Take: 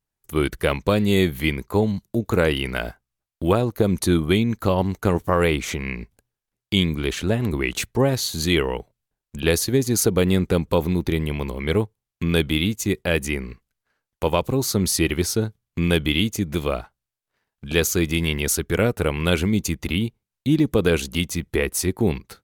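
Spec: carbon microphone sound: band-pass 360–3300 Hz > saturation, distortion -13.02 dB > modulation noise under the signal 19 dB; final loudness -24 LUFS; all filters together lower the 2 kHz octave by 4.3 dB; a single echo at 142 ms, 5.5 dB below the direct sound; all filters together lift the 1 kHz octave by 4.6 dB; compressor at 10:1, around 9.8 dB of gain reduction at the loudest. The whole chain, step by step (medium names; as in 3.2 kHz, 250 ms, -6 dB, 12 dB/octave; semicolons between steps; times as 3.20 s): peaking EQ 1 kHz +7.5 dB; peaking EQ 2 kHz -7 dB; compression 10:1, threshold -23 dBFS; band-pass 360–3300 Hz; delay 142 ms -5.5 dB; saturation -24.5 dBFS; modulation noise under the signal 19 dB; trim +10.5 dB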